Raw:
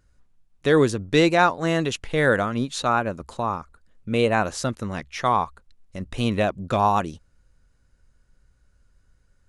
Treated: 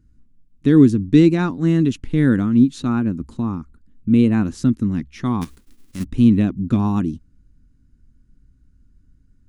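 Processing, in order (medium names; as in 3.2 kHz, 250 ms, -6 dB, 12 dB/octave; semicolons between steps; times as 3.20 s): 5.41–6.03 s: formants flattened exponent 0.3; resonant low shelf 400 Hz +13.5 dB, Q 3; trim -7 dB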